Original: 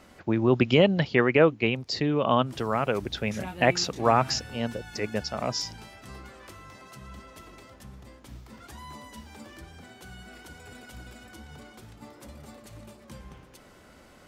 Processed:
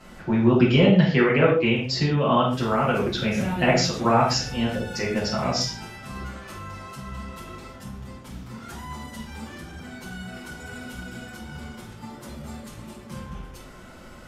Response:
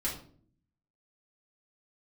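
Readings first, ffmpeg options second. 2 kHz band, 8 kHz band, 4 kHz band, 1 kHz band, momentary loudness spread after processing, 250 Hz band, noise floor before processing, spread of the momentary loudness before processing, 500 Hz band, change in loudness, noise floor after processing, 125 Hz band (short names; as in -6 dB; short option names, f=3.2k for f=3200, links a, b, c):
+3.0 dB, +3.5 dB, +4.0 dB, +3.0 dB, 21 LU, +5.5 dB, -54 dBFS, 20 LU, +2.0 dB, +4.0 dB, -44 dBFS, +6.5 dB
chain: -filter_complex "[0:a]acompressor=threshold=-29dB:ratio=1.5[a];[1:a]atrim=start_sample=2205,afade=t=out:st=0.16:d=0.01,atrim=end_sample=7497,asetrate=29106,aresample=44100[b];[a][b]afir=irnorm=-1:irlink=0"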